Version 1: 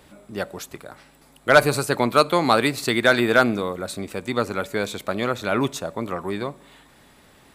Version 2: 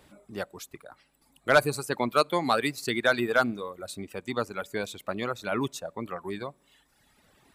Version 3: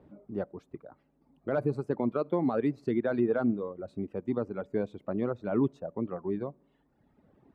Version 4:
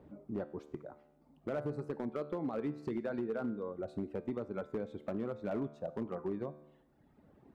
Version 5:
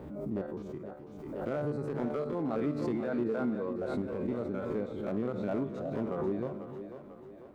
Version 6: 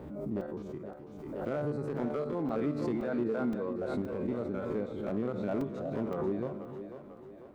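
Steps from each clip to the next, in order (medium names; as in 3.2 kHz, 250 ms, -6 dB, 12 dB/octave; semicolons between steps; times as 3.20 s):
reverb removal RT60 1.3 s; trim -6 dB
tilt EQ -2.5 dB/octave; peak limiter -15.5 dBFS, peak gain reduction 8.5 dB; band-pass filter 320 Hz, Q 0.68
compression 10:1, threshold -33 dBFS, peak gain reduction 12 dB; feedback comb 74 Hz, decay 0.9 s, harmonics all, mix 60%; hard clipper -36.5 dBFS, distortion -19 dB; trim +7 dB
spectrogram pixelated in time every 50 ms; two-band feedback delay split 330 Hz, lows 257 ms, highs 494 ms, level -9 dB; swell ahead of each attack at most 39 dB/s; trim +4.5 dB
crackling interface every 0.52 s, samples 128, zero, from 0.41 s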